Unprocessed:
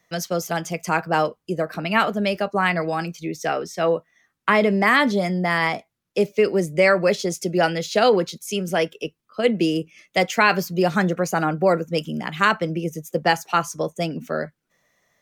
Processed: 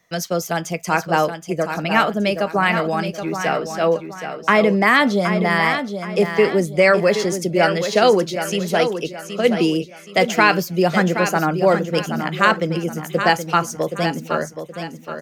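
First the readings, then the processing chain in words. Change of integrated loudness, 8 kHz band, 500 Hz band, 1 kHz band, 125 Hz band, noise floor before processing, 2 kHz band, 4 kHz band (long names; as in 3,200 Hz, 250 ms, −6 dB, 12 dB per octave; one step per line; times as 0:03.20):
+3.0 dB, +3.0 dB, +3.0 dB, +3.0 dB, +3.0 dB, −78 dBFS, +3.0 dB, +3.0 dB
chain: repeating echo 773 ms, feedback 35%, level −8.5 dB
level +2.5 dB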